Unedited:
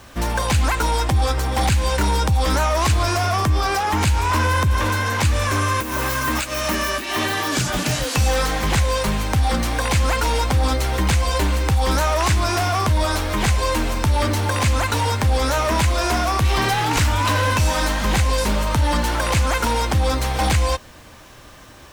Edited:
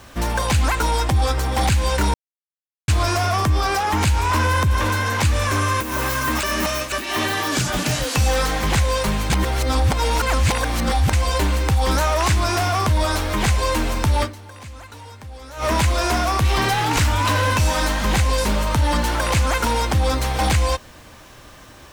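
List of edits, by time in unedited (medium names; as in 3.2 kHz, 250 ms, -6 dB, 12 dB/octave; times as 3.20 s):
2.14–2.88 s: mute
6.43–6.92 s: reverse
9.30–11.13 s: reverse
14.23–15.64 s: dip -19 dB, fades 0.35 s exponential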